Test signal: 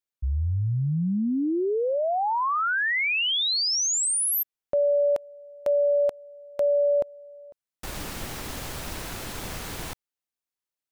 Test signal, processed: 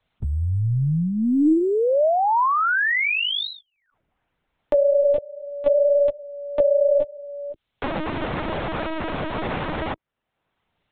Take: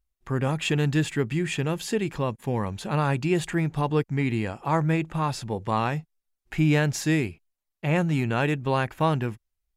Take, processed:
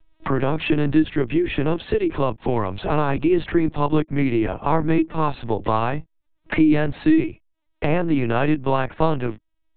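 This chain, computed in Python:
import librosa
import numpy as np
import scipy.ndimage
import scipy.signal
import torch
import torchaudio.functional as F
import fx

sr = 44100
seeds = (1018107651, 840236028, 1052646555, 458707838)

y = fx.graphic_eq_31(x, sr, hz=(200, 315, 630, 1000), db=(-9, 11, 6, 4))
y = fx.lpc_vocoder(y, sr, seeds[0], excitation='pitch_kept', order=10)
y = fx.band_squash(y, sr, depth_pct=70)
y = y * librosa.db_to_amplitude(2.0)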